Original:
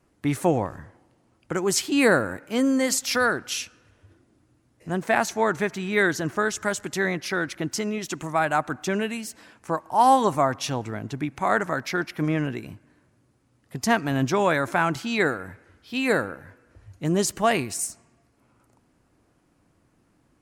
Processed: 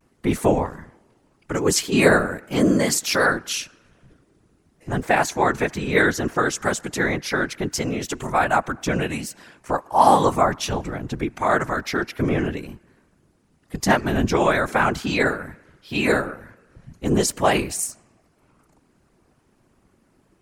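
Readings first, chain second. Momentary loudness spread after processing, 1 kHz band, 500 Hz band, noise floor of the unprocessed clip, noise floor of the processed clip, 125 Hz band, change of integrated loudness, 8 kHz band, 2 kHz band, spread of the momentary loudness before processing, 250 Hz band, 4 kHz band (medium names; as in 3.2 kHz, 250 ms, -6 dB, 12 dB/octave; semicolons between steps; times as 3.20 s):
12 LU, +3.0 dB, +3.0 dB, -65 dBFS, -63 dBFS, +3.5 dB, +3.0 dB, +3.0 dB, +3.0 dB, 12 LU, +2.5 dB, +3.0 dB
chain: whisper effect; vibrato 0.41 Hz 27 cents; trim +3 dB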